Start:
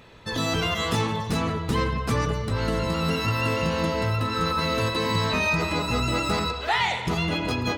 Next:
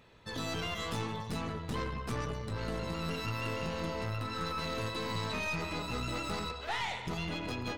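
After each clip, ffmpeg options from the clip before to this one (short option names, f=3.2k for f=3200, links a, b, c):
-af "aeval=exprs='(tanh(10*val(0)+0.5)-tanh(0.5))/10':c=same,volume=-8.5dB"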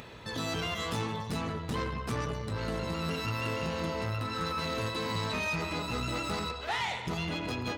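-af "highpass=49,acompressor=mode=upward:threshold=-41dB:ratio=2.5,volume=3dB"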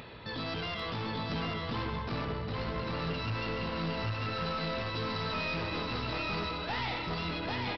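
-af "aresample=11025,asoftclip=type=hard:threshold=-33.5dB,aresample=44100,aecho=1:1:795:0.708"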